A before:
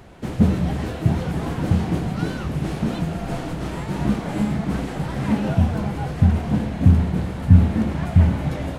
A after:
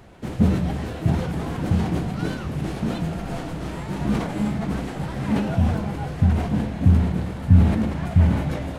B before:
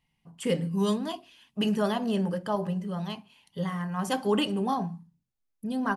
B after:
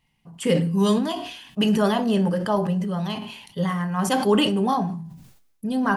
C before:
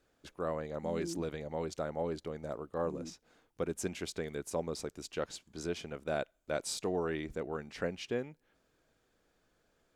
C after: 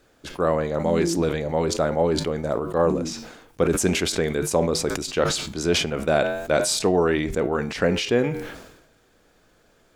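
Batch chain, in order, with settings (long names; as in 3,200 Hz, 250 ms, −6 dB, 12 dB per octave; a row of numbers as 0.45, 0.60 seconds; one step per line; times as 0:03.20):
flanger 0.41 Hz, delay 8.9 ms, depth 3.1 ms, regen −84%
level that may fall only so fast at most 58 dB per second
loudness normalisation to −23 LKFS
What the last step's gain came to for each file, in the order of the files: +1.5, +10.5, +18.5 decibels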